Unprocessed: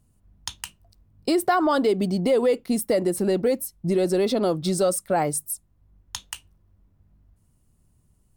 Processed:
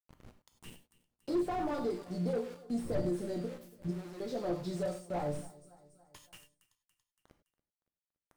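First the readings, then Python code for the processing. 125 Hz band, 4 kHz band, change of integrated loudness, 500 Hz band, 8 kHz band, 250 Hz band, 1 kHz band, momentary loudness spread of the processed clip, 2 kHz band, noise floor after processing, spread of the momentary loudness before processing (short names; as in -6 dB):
-9.0 dB, -18.5 dB, -13.0 dB, -14.5 dB, -23.5 dB, -12.0 dB, -14.5 dB, 20 LU, -17.5 dB, under -85 dBFS, 17 LU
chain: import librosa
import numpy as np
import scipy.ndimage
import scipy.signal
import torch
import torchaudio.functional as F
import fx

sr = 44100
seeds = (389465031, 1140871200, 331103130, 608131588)

p1 = fx.spec_quant(x, sr, step_db=15)
p2 = fx.dmg_wind(p1, sr, seeds[0], corner_hz=190.0, level_db=-39.0)
p3 = fx.step_gate(p2, sr, bpm=100, pattern='xxx.xx..xx', floor_db=-12.0, edge_ms=4.5)
p4 = fx.resonator_bank(p3, sr, root=46, chord='major', decay_s=0.27)
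p5 = fx.env_phaser(p4, sr, low_hz=200.0, high_hz=2700.0, full_db=-40.0)
p6 = np.where(np.abs(p5) >= 10.0 ** (-50.0 / 20.0), p5, 0.0)
p7 = p6 + fx.echo_feedback(p6, sr, ms=283, feedback_pct=56, wet_db=-22.0, dry=0)
p8 = fx.rev_gated(p7, sr, seeds[1], gate_ms=120, shape='flat', drr_db=7.5)
p9 = fx.slew_limit(p8, sr, full_power_hz=14.0)
y = F.gain(torch.from_numpy(p9), 1.5).numpy()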